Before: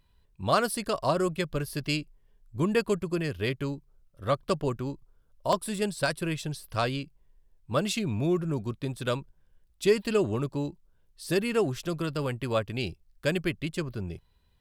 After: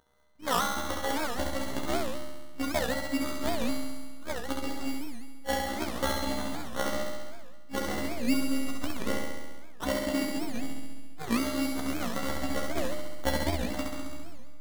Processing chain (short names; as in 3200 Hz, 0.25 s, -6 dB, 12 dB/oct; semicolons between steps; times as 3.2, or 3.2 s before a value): trilling pitch shifter -4 st, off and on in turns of 0.595 s; weighting filter D; treble ducked by the level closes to 2400 Hz, closed at -23.5 dBFS; bell 270 Hz +8.5 dB 0.27 oct; robotiser 271 Hz; sample-rate reducer 2500 Hz, jitter 0%; resonator 75 Hz, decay 0.36 s, harmonics all, mix 80%; flutter echo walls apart 11.6 m, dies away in 1.3 s; digital reverb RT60 1.3 s, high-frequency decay 0.95×, pre-delay 45 ms, DRR 15 dB; record warp 78 rpm, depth 250 cents; gain +5.5 dB